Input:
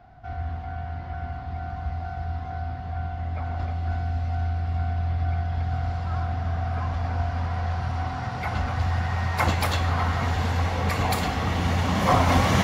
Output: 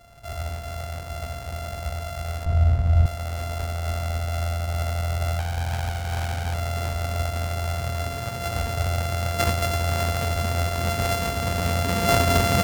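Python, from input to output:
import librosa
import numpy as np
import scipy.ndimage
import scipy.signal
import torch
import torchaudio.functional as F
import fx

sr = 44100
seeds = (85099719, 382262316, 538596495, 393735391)

y = np.r_[np.sort(x[:len(x) // 64 * 64].reshape(-1, 64), axis=1).ravel(), x[len(x) // 64 * 64:]]
y = fx.riaa(y, sr, side='playback', at=(2.45, 3.06))
y = fx.doppler_dist(y, sr, depth_ms=0.5, at=(5.39, 6.54))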